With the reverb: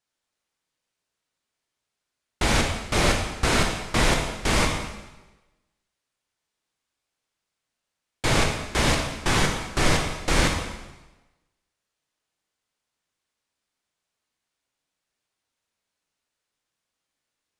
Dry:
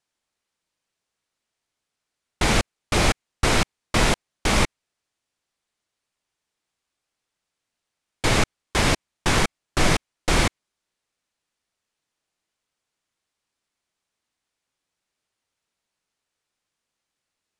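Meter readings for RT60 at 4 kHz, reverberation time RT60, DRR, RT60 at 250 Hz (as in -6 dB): 1.0 s, 1.1 s, 1.0 dB, 1.1 s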